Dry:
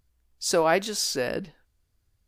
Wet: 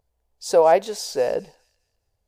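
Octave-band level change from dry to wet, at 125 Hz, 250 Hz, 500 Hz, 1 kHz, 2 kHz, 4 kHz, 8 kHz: -4.5 dB, -2.5 dB, +7.5 dB, +6.5 dB, -4.5 dB, -4.5 dB, -4.5 dB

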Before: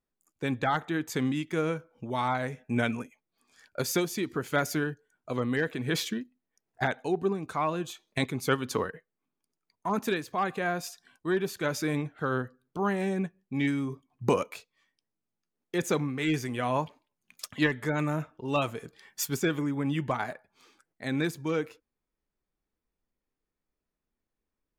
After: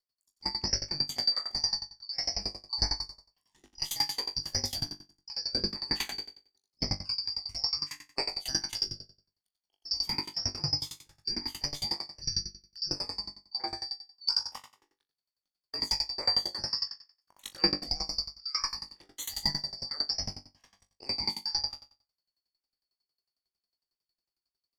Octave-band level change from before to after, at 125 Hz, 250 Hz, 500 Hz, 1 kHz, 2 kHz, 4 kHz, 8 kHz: -10.5 dB, -15.0 dB, -16.5 dB, -11.5 dB, -12.5 dB, +12.5 dB, +2.0 dB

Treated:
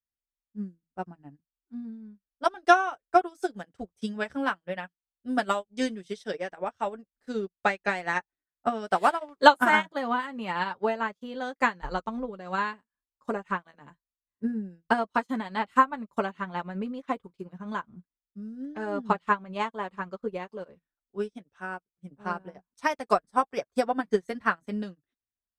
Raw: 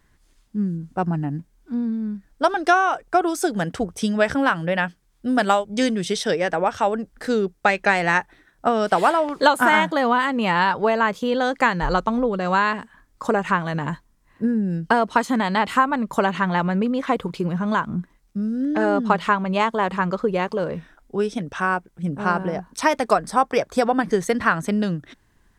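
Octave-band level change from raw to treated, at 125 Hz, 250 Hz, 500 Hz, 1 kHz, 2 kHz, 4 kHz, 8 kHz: -16.0 dB, -10.5 dB, -8.5 dB, -6.5 dB, -7.5 dB, -7.5 dB, under -10 dB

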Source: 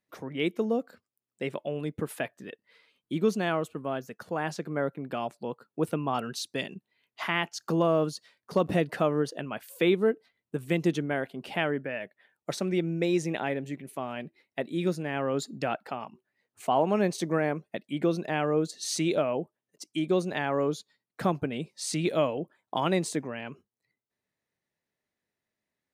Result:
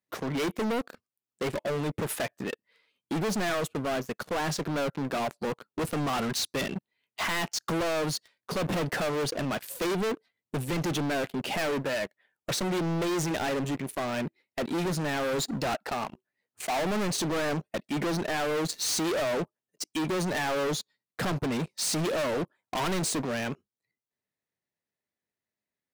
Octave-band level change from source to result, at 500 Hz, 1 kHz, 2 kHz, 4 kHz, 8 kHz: -2.0 dB, +0.5 dB, +2.0 dB, +4.5 dB, +6.5 dB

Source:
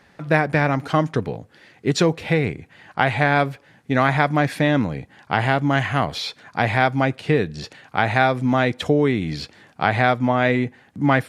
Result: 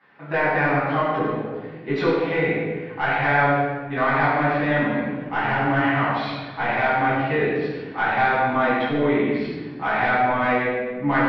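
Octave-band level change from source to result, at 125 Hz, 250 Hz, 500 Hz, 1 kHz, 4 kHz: -6.0 dB, -2.0 dB, -0.5 dB, +1.0 dB, -6.0 dB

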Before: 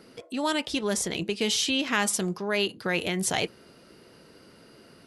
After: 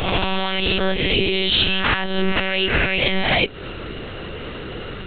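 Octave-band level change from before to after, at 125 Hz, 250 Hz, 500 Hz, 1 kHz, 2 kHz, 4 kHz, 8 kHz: +11.0 dB, +5.0 dB, +7.0 dB, +8.0 dB, +10.0 dB, +10.0 dB, under -35 dB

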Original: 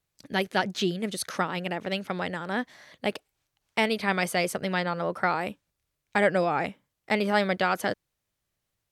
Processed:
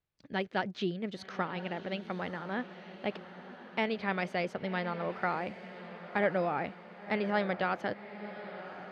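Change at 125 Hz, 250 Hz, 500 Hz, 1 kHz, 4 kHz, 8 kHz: -5.5 dB, -5.5 dB, -6.0 dB, -6.0 dB, -10.0 dB, under -20 dB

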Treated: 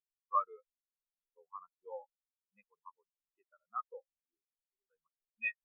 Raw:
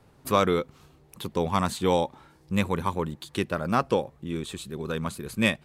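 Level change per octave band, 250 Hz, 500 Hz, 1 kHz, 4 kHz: under -40 dB, -25.0 dB, -12.0 dB, under -40 dB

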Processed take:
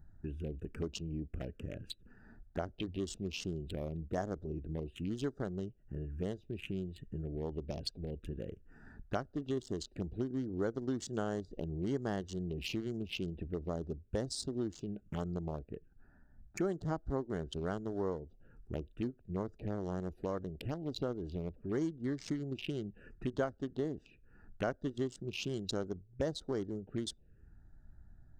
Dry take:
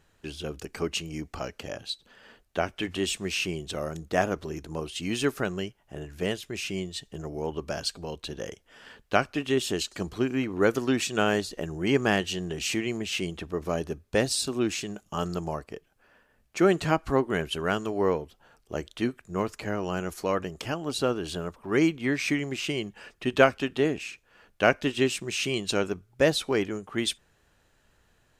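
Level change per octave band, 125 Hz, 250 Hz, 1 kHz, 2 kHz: -5.0 dB, -9.0 dB, -14.5 dB, -19.0 dB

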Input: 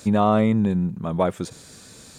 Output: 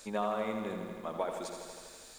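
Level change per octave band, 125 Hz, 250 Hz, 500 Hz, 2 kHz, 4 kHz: -24.5 dB, -19.5 dB, -11.5 dB, -8.0 dB, -8.0 dB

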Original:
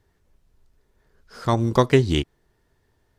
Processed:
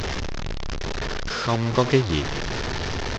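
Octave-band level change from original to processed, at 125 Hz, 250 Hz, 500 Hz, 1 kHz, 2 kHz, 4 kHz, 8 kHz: -1.0 dB, -1.5 dB, -1.5 dB, 0.0 dB, +5.0 dB, +4.5 dB, +6.5 dB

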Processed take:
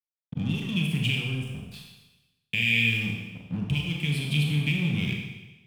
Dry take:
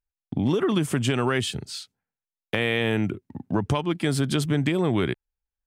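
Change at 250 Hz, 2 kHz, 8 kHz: -5.0 dB, +3.0 dB, -9.0 dB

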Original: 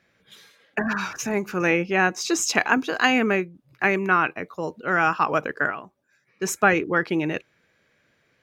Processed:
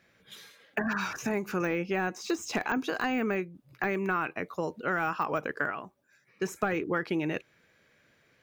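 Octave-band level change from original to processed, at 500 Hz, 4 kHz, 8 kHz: -6.5 dB, -11.0 dB, -14.5 dB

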